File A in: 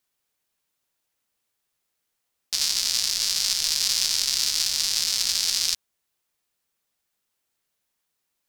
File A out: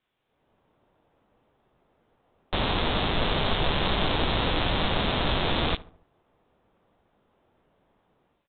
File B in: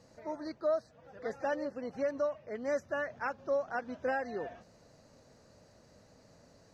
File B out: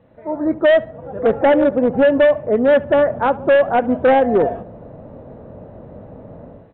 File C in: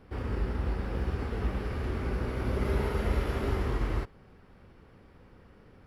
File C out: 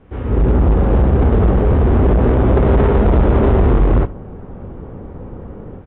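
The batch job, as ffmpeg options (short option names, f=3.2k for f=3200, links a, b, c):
-filter_complex "[0:a]acrossover=split=1000[a][b];[a]dynaudnorm=f=250:g=3:m=17dB[c];[b]flanger=delay=18:depth=2.8:speed=0.67[d];[c][d]amix=inputs=2:normalize=0,volume=16.5dB,asoftclip=hard,volume=-16.5dB,asplit=2[e][f];[f]adelay=71,lowpass=f=1.5k:p=1,volume=-18dB,asplit=2[g][h];[h]adelay=71,lowpass=f=1.5k:p=1,volume=0.5,asplit=2[i][j];[j]adelay=71,lowpass=f=1.5k:p=1,volume=0.5,asplit=2[k][l];[l]adelay=71,lowpass=f=1.5k:p=1,volume=0.5[m];[e][g][i][k][m]amix=inputs=5:normalize=0,aresample=8000,aresample=44100,volume=7.5dB"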